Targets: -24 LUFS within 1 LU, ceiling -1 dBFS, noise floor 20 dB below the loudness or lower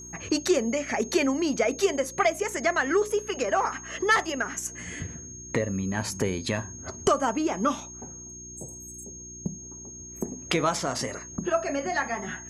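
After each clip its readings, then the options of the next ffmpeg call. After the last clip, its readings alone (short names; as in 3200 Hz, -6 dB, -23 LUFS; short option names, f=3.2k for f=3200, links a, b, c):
hum 60 Hz; harmonics up to 360 Hz; hum level -47 dBFS; steady tone 6500 Hz; tone level -41 dBFS; loudness -27.5 LUFS; peak -11.0 dBFS; loudness target -24.0 LUFS
-> -af "bandreject=f=60:t=h:w=4,bandreject=f=120:t=h:w=4,bandreject=f=180:t=h:w=4,bandreject=f=240:t=h:w=4,bandreject=f=300:t=h:w=4,bandreject=f=360:t=h:w=4"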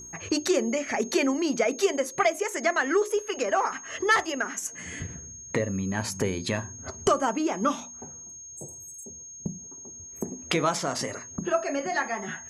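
hum none; steady tone 6500 Hz; tone level -41 dBFS
-> -af "bandreject=f=6.5k:w=30"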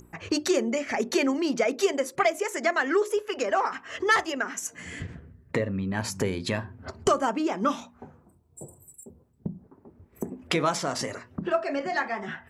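steady tone none; loudness -27.5 LUFS; peak -11.0 dBFS; loudness target -24.0 LUFS
-> -af "volume=3.5dB"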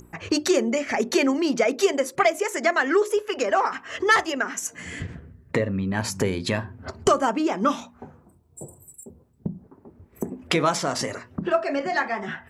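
loudness -24.0 LUFS; peak -7.5 dBFS; noise floor -56 dBFS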